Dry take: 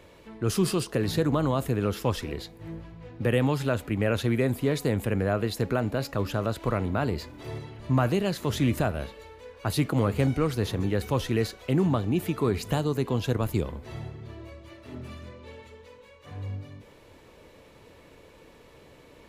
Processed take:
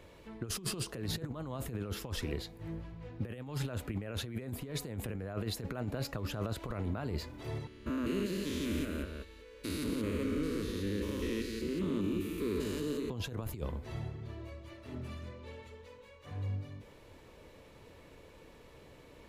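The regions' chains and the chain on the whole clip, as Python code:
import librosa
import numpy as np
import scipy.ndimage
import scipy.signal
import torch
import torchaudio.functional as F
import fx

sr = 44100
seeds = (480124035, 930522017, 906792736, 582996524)

y = fx.chain(x, sr, fx.spec_steps(hold_ms=200),
    fx.fixed_phaser(hz=310.0, stages=4),
    fx.echo_single(ms=176, db=-5.0), at=(7.67, 13.1))
y = fx.low_shelf(y, sr, hz=92.0, db=5.0)
y = fx.over_compress(y, sr, threshold_db=-28.0, ratio=-0.5)
y = F.gain(torch.from_numpy(y), -6.5).numpy()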